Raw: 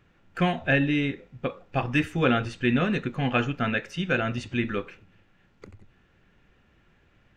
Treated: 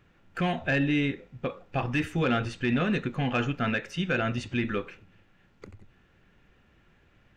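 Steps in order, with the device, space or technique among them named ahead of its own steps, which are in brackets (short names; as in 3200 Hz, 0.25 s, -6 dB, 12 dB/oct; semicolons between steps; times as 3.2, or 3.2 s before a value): soft clipper into limiter (soft clip -13 dBFS, distortion -22 dB; limiter -18 dBFS, peak gain reduction 4 dB)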